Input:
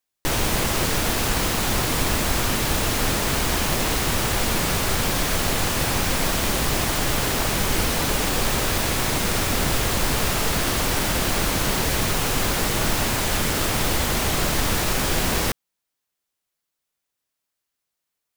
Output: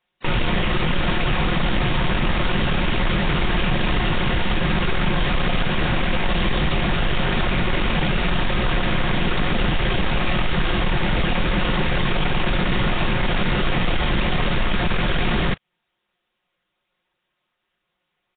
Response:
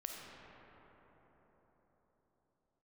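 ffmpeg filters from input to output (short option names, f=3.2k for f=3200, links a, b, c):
-filter_complex "[0:a]aecho=1:1:5.4:0.78,asetrate=42845,aresample=44100,atempo=1.0293,acrossover=split=210|1500[a][b][c];[a]acompressor=threshold=-23dB:ratio=4[d];[b]acompressor=threshold=-35dB:ratio=4[e];[c]acompressor=threshold=-28dB:ratio=4[f];[d][e][f]amix=inputs=3:normalize=0,aeval=exprs='0.266*sin(PI/2*3.16*val(0)/0.266)':c=same,volume=-2.5dB" -ar 8000 -c:a nellymoser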